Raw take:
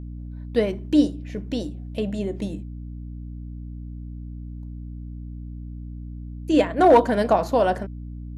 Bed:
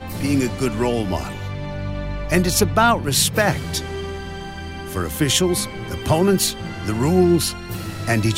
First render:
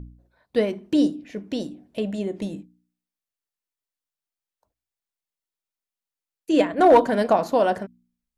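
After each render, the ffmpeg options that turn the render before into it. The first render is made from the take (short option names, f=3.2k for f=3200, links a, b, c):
-af "bandreject=f=60:t=h:w=4,bandreject=f=120:t=h:w=4,bandreject=f=180:t=h:w=4,bandreject=f=240:t=h:w=4,bandreject=f=300:t=h:w=4"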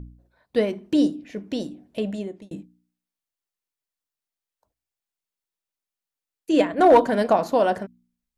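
-filter_complex "[0:a]asplit=2[a][b];[a]atrim=end=2.51,asetpts=PTS-STARTPTS,afade=t=out:st=2.09:d=0.42[c];[b]atrim=start=2.51,asetpts=PTS-STARTPTS,afade=t=in:d=0.004:c=hsin[d];[c][d]concat=n=2:v=0:a=1"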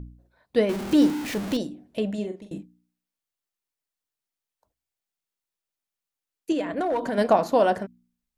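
-filter_complex "[0:a]asettb=1/sr,asplit=3[a][b][c];[a]atrim=end=0.694[d];[b]atrim=start=0.69:end=1.57,asetpts=PTS-STARTPTS,afade=t=in:d=0.004:c=qsin,afade=t=out:st=0.876:d=0.004:c=qsin,aeval=exprs='val(0)+0.5*0.0422*sgn(val(0))':c=same[e];[c]atrim=start=1.566[f];[d][e]acrossfade=d=0.004:c1=hsin:c2=qsin[g];[g][f]acrossfade=d=0.004:c1=qsin:c2=hsin,asettb=1/sr,asplit=3[h][i][j];[h]atrim=end=2.144[k];[i]atrim=start=2.14:end=2.58,asetpts=PTS-STARTPTS,afade=t=in:d=0.004:c=qsin,afade=t=out:st=0.436:d=0.004:c=qsin,asplit=2[l][m];[m]adelay=43,volume=-7.5dB[n];[l][n]amix=inputs=2:normalize=0,atrim=end_sample=19404[o];[j]atrim=start=2.576[p];[k][o]acrossfade=d=0.004:c1=hsin:c2=qsin[q];[q][p]acrossfade=d=0.004:c1=qsin:c2=hsin,asettb=1/sr,asplit=3[r][s][t];[r]atrim=end=6.524[u];[s]atrim=start=6.52:end=7.18,asetpts=PTS-STARTPTS,afade=t=in:d=0.004:c=qsin,afade=t=out:st=0.656:d=0.004:c=qsin,acompressor=threshold=-23dB:ratio=6:attack=3.2:release=140:knee=1:detection=peak[v];[t]atrim=start=7.176[w];[u][v]acrossfade=d=0.004:c1=hsin:c2=qsin[x];[x][w]acrossfade=d=0.004:c1=qsin:c2=hsin"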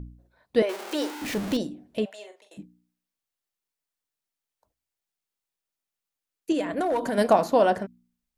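-filter_complex "[0:a]asettb=1/sr,asplit=3[a][b][c];[a]atrim=end=0.624[d];[b]atrim=start=0.62:end=1.22,asetpts=PTS-STARTPTS,afade=t=in:d=0.004:c=qsin,afade=t=out:st=0.596:d=0.004:c=qsin,highpass=f=430:w=0.5412,highpass=f=430:w=1.3066[e];[c]atrim=start=1.216[f];[d][e]acrossfade=d=0.004:c1=hsin:c2=qsin[g];[g][f]acrossfade=d=0.004:c1=qsin:c2=hsin,asplit=3[h][i][j];[h]afade=t=out:st=2.04:d=0.02[k];[i]highpass=f=630:w=0.5412,highpass=f=630:w=1.3066,afade=t=in:st=2.04:d=0.02,afade=t=out:st=2.57:d=0.02[l];[j]afade=t=in:st=2.57:d=0.02[m];[k][l][m]amix=inputs=3:normalize=0,asettb=1/sr,asplit=3[n][o][p];[n]atrim=end=6.544[q];[o]atrim=start=6.54:end=7.46,asetpts=PTS-STARTPTS,afade=t=in:d=0.004:c=qsin,afade=t=out:st=0.916:d=0.004:c=qsin,equalizer=f=11k:w=0.71:g=9.5[r];[p]atrim=start=7.456[s];[q][r]acrossfade=d=0.004:c1=hsin:c2=qsin[t];[t][s]acrossfade=d=0.004:c1=qsin:c2=hsin"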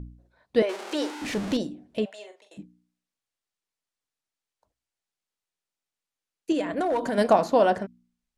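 -af "lowpass=9k"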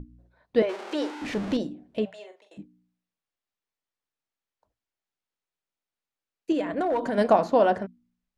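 -af "lowpass=f=3k:p=1,bandreject=f=60:t=h:w=6,bandreject=f=120:t=h:w=6,bandreject=f=180:t=h:w=6"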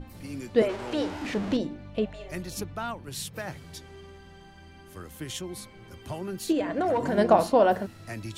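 -filter_complex "[1:a]volume=-18.5dB[a];[0:a][a]amix=inputs=2:normalize=0"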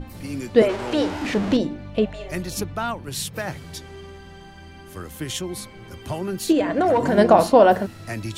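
-af "volume=7dB,alimiter=limit=-3dB:level=0:latency=1"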